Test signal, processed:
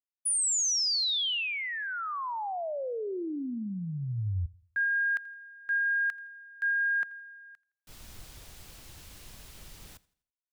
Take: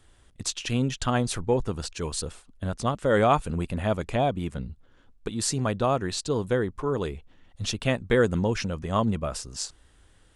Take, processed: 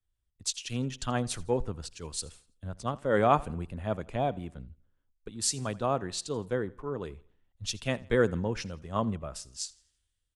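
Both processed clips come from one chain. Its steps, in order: on a send: feedback delay 83 ms, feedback 51%, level -21 dB; on the sum: three bands expanded up and down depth 70%; trim -6.5 dB

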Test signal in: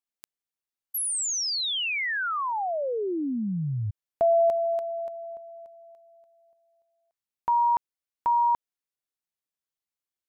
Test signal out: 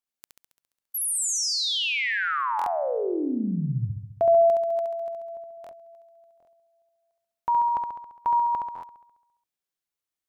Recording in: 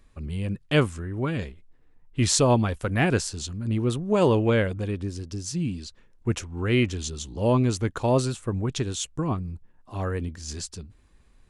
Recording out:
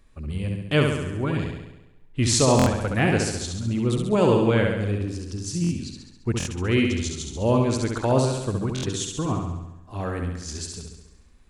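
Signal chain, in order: flutter echo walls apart 11.7 m, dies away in 0.94 s; buffer glitch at 2.57/5.62/6.38/8.74 s, samples 1024, times 3

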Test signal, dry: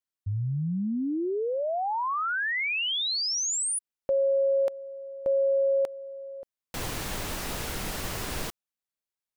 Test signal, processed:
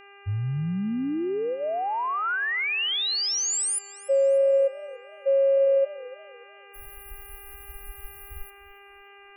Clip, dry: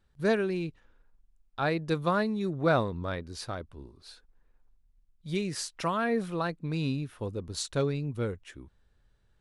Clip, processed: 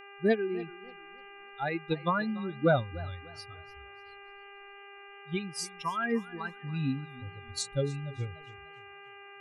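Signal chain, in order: expander on every frequency bin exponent 3; mains buzz 400 Hz, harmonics 7, -54 dBFS -1 dB/octave; modulated delay 292 ms, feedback 32%, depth 145 cents, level -19 dB; trim +4 dB

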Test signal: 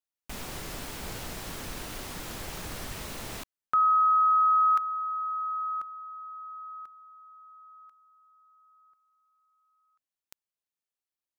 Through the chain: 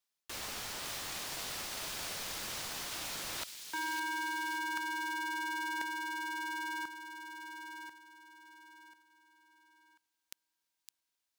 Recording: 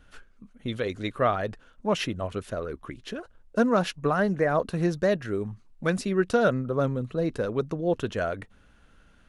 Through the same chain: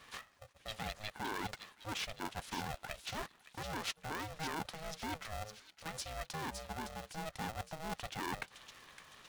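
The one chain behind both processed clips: peaking EQ 4.5 kHz +5 dB 1.5 oct; peak limiter -20.5 dBFS; reverse; compression 10:1, threshold -40 dBFS; reverse; high-pass 380 Hz 12 dB/octave; on a send: feedback echo behind a high-pass 562 ms, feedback 50%, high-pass 3.2 kHz, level -5 dB; on the sum: polarity switched at an audio rate 320 Hz; trim +4 dB

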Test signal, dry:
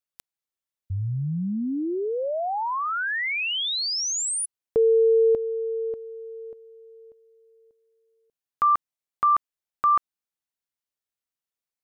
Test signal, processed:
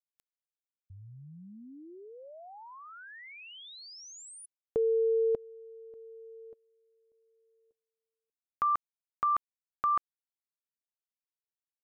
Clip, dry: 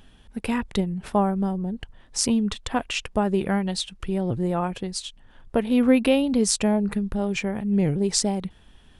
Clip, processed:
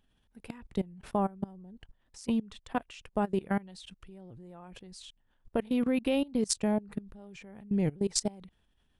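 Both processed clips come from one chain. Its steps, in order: level held to a coarse grid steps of 22 dB; trim -4.5 dB

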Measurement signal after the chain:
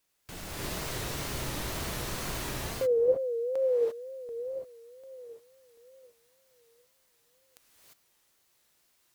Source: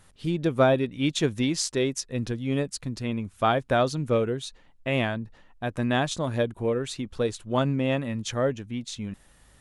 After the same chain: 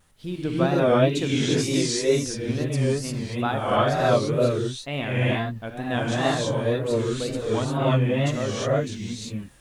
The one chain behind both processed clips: word length cut 12-bit, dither triangular; gated-style reverb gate 370 ms rising, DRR -7 dB; wow and flutter 120 cents; trim -5 dB

